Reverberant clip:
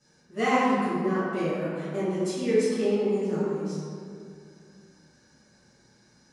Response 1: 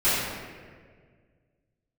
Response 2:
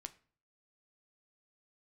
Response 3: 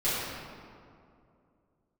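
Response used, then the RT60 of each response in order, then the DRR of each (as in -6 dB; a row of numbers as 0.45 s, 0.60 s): 3; 1.8 s, 0.45 s, 2.5 s; -17.5 dB, 9.0 dB, -13.0 dB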